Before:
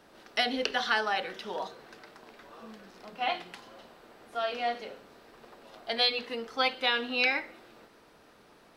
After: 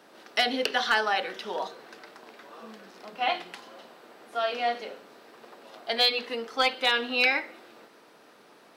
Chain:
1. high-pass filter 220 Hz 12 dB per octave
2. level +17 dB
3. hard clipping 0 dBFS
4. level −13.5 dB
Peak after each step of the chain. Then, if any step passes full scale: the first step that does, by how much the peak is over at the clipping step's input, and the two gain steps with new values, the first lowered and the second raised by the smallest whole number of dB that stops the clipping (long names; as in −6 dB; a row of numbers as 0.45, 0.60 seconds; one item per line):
−11.5, +5.5, 0.0, −13.5 dBFS
step 2, 5.5 dB
step 2 +11 dB, step 4 −7.5 dB